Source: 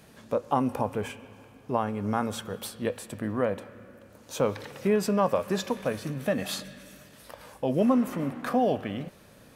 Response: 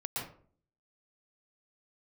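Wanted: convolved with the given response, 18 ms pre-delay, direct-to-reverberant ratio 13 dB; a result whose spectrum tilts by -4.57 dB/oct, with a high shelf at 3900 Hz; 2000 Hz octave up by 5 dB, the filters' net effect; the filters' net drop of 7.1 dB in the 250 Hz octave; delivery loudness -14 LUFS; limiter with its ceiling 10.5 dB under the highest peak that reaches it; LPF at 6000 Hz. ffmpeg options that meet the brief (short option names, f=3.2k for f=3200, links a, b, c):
-filter_complex "[0:a]lowpass=6k,equalizer=f=250:t=o:g=-8.5,equalizer=f=2k:t=o:g=5.5,highshelf=f=3.9k:g=4.5,alimiter=limit=-22.5dB:level=0:latency=1,asplit=2[a][b];[1:a]atrim=start_sample=2205,adelay=18[c];[b][c]afir=irnorm=-1:irlink=0,volume=-16dB[d];[a][d]amix=inputs=2:normalize=0,volume=20.5dB"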